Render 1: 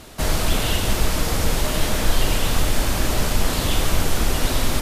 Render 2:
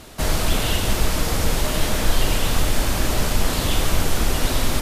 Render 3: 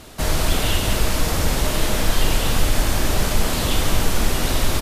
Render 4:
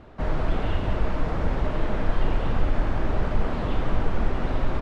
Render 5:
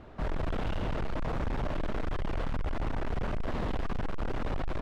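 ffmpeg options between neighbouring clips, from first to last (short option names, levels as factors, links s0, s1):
-af anull
-af "aecho=1:1:52.48|189.5:0.316|0.355"
-af "flanger=delay=0.3:depth=7.7:regen=-67:speed=1.2:shape=triangular,lowpass=1500"
-af "volume=20,asoftclip=hard,volume=0.0501,volume=0.794"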